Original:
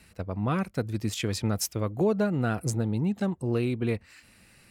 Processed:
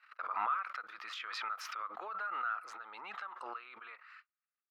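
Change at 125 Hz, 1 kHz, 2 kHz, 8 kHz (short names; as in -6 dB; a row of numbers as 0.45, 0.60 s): under -40 dB, +1.0 dB, -2.5 dB, -21.0 dB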